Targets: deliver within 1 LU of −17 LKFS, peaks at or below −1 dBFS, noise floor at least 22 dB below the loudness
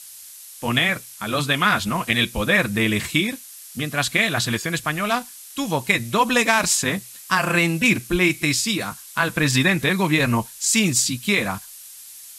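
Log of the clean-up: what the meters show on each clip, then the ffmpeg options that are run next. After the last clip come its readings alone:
background noise floor −41 dBFS; target noise floor −43 dBFS; integrated loudness −20.5 LKFS; sample peak −2.0 dBFS; target loudness −17.0 LKFS
→ -af "afftdn=noise_reduction=6:noise_floor=-41"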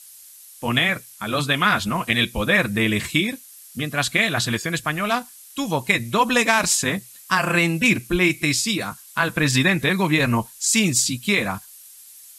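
background noise floor −45 dBFS; integrated loudness −20.5 LKFS; sample peak −2.0 dBFS; target loudness −17.0 LKFS
→ -af "volume=3.5dB,alimiter=limit=-1dB:level=0:latency=1"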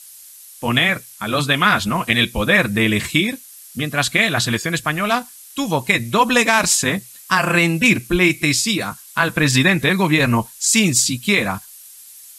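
integrated loudness −17.0 LKFS; sample peak −1.0 dBFS; background noise floor −42 dBFS

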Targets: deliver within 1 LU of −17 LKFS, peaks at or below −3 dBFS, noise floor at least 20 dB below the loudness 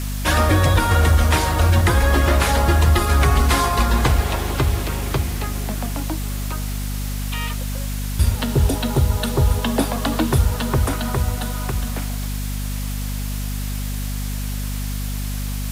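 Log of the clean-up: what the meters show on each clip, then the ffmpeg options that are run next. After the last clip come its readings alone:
mains hum 50 Hz; hum harmonics up to 250 Hz; level of the hum −22 dBFS; background noise floor −25 dBFS; target noise floor −41 dBFS; integrated loudness −20.5 LKFS; sample peak −6.0 dBFS; target loudness −17.0 LKFS
→ -af "bandreject=frequency=50:width_type=h:width=6,bandreject=frequency=100:width_type=h:width=6,bandreject=frequency=150:width_type=h:width=6,bandreject=frequency=200:width_type=h:width=6,bandreject=frequency=250:width_type=h:width=6"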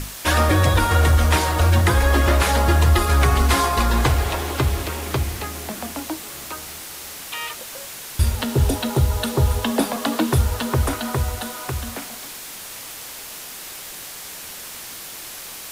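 mains hum none found; background noise floor −36 dBFS; target noise floor −41 dBFS
→ -af "afftdn=noise_reduction=6:noise_floor=-36"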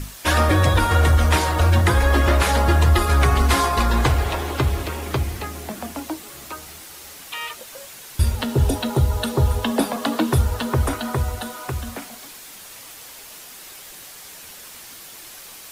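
background noise floor −41 dBFS; integrated loudness −20.0 LKFS; sample peak −7.0 dBFS; target loudness −17.0 LKFS
→ -af "volume=3dB"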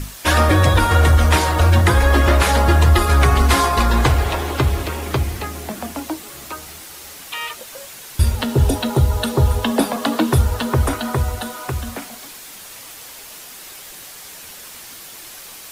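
integrated loudness −17.0 LKFS; sample peak −4.0 dBFS; background noise floor −38 dBFS

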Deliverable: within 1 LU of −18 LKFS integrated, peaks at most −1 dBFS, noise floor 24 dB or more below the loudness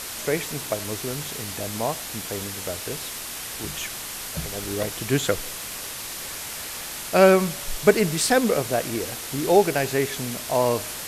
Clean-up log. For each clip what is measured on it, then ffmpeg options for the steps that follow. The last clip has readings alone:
background noise floor −34 dBFS; target noise floor −49 dBFS; integrated loudness −24.5 LKFS; sample peak −3.0 dBFS; target loudness −18.0 LKFS
→ -af "afftdn=noise_reduction=15:noise_floor=-34"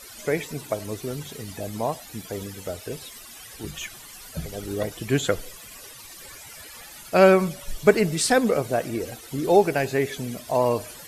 background noise floor −44 dBFS; target noise floor −49 dBFS
→ -af "afftdn=noise_reduction=6:noise_floor=-44"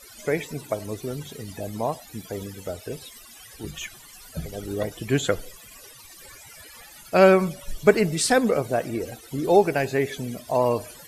background noise floor −47 dBFS; target noise floor −48 dBFS
→ -af "afftdn=noise_reduction=6:noise_floor=-47"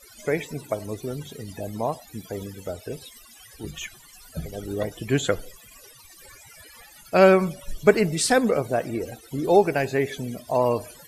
background noise floor −50 dBFS; integrated loudness −24.0 LKFS; sample peak −3.0 dBFS; target loudness −18.0 LKFS
→ -af "volume=6dB,alimiter=limit=-1dB:level=0:latency=1"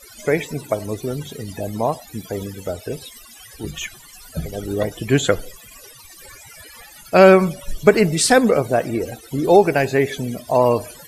integrated loudness −18.5 LKFS; sample peak −1.0 dBFS; background noise floor −44 dBFS

